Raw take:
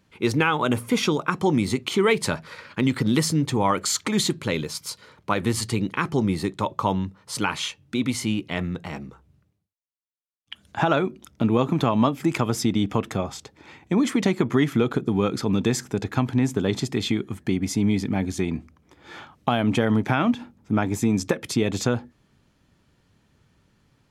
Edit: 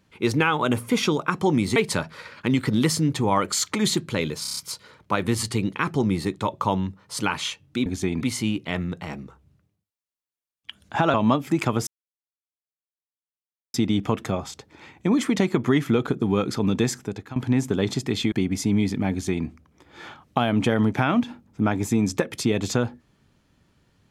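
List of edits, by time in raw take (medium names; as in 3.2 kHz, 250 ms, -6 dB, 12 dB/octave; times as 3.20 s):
1.76–2.09 s: delete
4.75 s: stutter 0.03 s, 6 plays
10.97–11.87 s: delete
12.60 s: insert silence 1.87 s
15.71–16.22 s: fade out, to -17 dB
17.18–17.43 s: delete
18.22–18.57 s: copy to 8.04 s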